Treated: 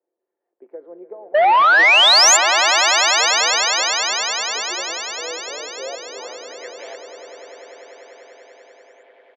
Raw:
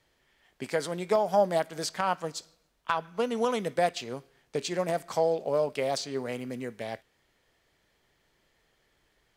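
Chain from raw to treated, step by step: high-pass 270 Hz 24 dB/octave; three-band isolator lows -19 dB, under 550 Hz, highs -24 dB, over 3 kHz; comb 5.8 ms, depth 40%; peak limiter -23.5 dBFS, peak gain reduction 10 dB; 1.35–1.96 s: waveshaping leveller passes 3; low-pass sweep 380 Hz -> 6.5 kHz, 5.79–7.21 s; 1.34–2.37 s: painted sound rise 570–7500 Hz -11 dBFS; on a send: echo with a slow build-up 98 ms, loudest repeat 8, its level -13 dB; on the sum: transformer saturation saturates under 1.6 kHz

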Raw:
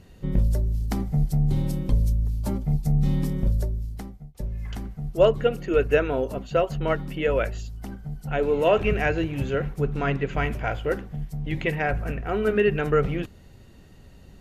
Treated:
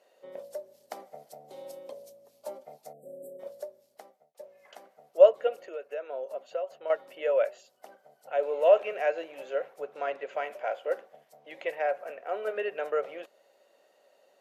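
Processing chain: 1.28–2.58 s: dynamic bell 1.6 kHz, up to -4 dB, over -49 dBFS, Q 1; 2.93–3.40 s: spectral selection erased 740–7400 Hz; 5.65–6.90 s: compression 4:1, threshold -29 dBFS, peak gain reduction 12.5 dB; ladder high-pass 530 Hz, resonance 70%; trim +1.5 dB

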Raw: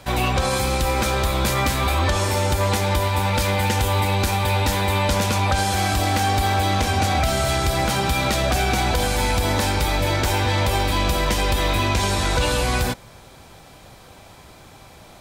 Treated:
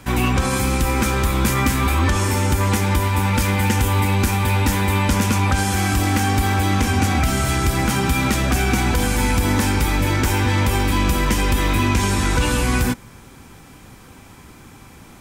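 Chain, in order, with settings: fifteen-band graphic EQ 250 Hz +6 dB, 630 Hz -11 dB, 4 kHz -8 dB; trim +3 dB

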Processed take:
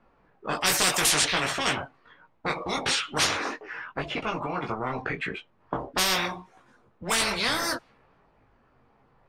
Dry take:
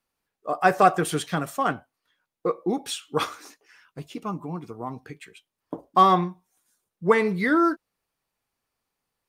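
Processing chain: level-controlled noise filter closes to 1.3 kHz, open at -16 dBFS; chorus voices 4, 0.46 Hz, delay 19 ms, depth 4.5 ms; spectrum-flattening compressor 10:1

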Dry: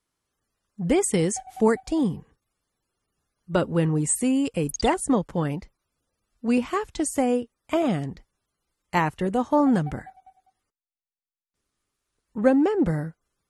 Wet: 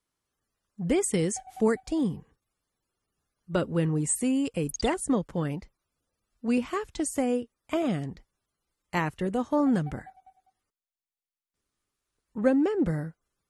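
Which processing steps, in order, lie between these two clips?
dynamic bell 860 Hz, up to -5 dB, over -37 dBFS, Q 2.2; trim -3.5 dB

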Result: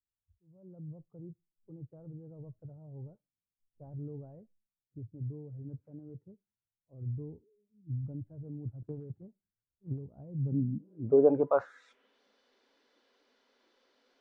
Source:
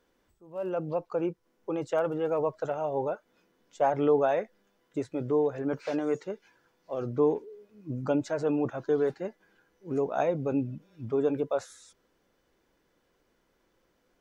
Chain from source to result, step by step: low-pass sweep 100 Hz -> 4.3 kHz, 10.29–12.22 s; spectral noise reduction 24 dB; on a send at -5.5 dB: differentiator + reverberation RT60 0.30 s, pre-delay 3 ms; 8.82–10.07 s: on the sum: transient shaper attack +8 dB, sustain +3 dB

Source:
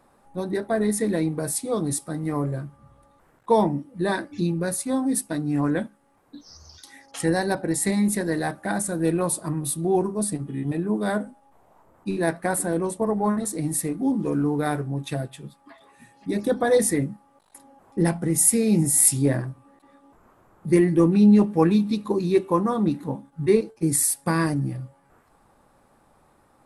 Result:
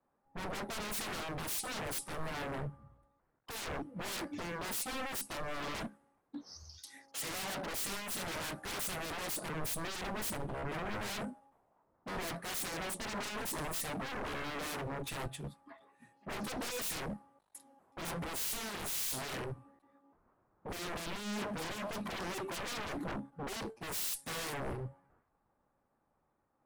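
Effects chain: valve stage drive 21 dB, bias 0.3; wavefolder -35.5 dBFS; three bands expanded up and down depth 100%; trim +1 dB

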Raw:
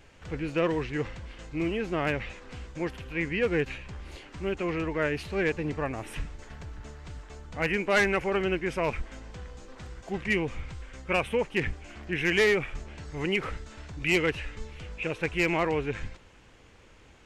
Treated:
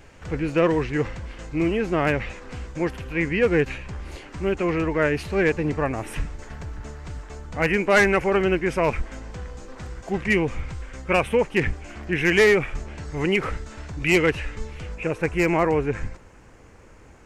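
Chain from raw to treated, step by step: peaking EQ 3.4 kHz -5 dB 0.99 oct, from 14.95 s -13 dB; trim +7 dB

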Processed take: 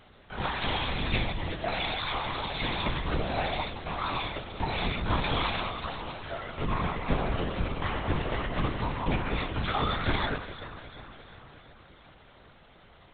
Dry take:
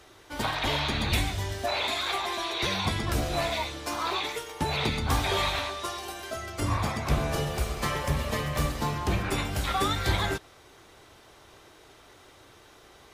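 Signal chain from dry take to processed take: echo whose repeats swap between lows and highs 177 ms, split 1.4 kHz, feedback 77%, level -11.5 dB; LPC vocoder at 8 kHz whisper; trim -1.5 dB

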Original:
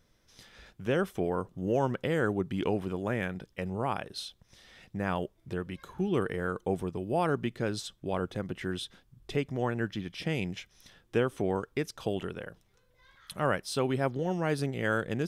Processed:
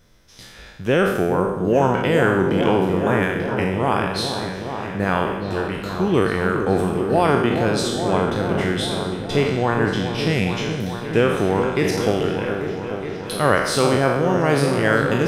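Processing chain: spectral sustain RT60 0.96 s; delay with an opening low-pass 420 ms, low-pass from 750 Hz, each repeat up 1 oct, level -6 dB; trim +9 dB

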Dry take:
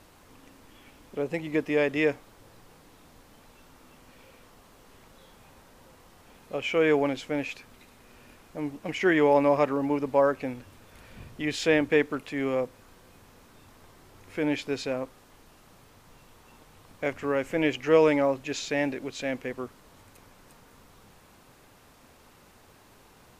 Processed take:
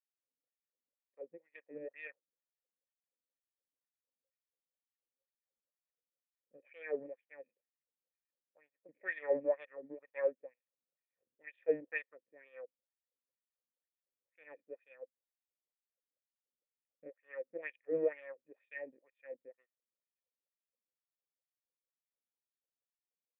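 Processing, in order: power-law waveshaper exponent 2; cascade formant filter e; wah-wah 2.1 Hz 220–3400 Hz, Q 3.2; trim +9 dB

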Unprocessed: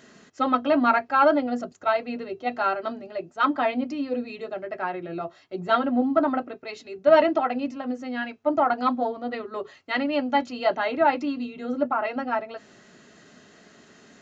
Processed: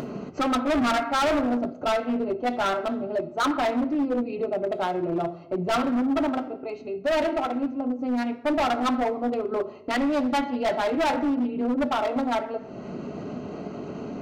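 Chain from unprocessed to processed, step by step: local Wiener filter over 25 samples; upward compressor, threshold -24 dBFS; 5.85–7.99 s: feedback comb 270 Hz, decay 0.42 s, mix 40%; simulated room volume 250 m³, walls mixed, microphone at 0.33 m; overload inside the chain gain 24.5 dB; loudspeaker Doppler distortion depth 0.14 ms; trim +4 dB

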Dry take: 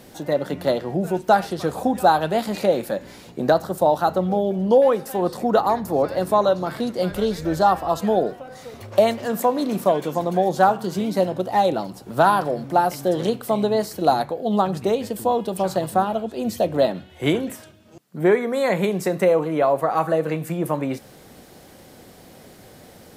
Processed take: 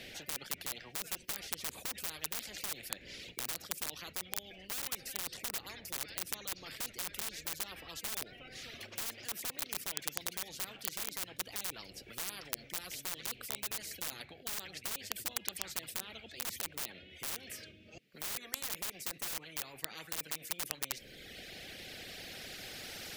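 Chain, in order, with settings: recorder AGC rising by 5.6 dB/s; reverb removal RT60 1.3 s; FFT filter 490 Hz 0 dB, 1 kHz -25 dB, 2.3 kHz +8 dB, 8.2 kHz -14 dB; integer overflow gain 17 dB; spectrum-flattening compressor 10:1; trim +8.5 dB

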